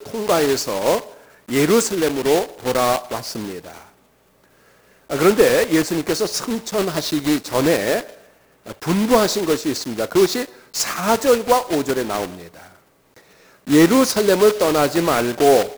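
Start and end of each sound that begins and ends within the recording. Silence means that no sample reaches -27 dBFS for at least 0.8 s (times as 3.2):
5.1–12.35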